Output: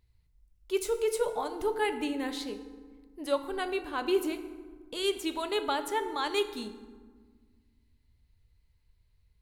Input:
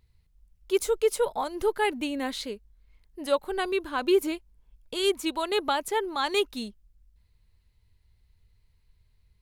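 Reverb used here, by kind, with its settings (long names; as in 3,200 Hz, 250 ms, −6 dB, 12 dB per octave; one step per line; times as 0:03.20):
feedback delay network reverb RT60 1.5 s, low-frequency decay 1.5×, high-frequency decay 0.55×, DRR 7.5 dB
level −4.5 dB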